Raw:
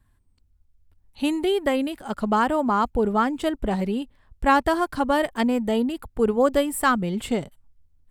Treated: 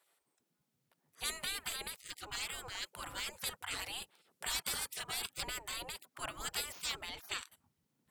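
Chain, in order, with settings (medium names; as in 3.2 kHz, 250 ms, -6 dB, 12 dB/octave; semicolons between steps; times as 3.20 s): spectral gate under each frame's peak -30 dB weak; 2.88–4.99 s: peaking EQ 11 kHz +5 dB 1.5 oct; slew-rate limiter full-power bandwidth 200 Hz; trim +4 dB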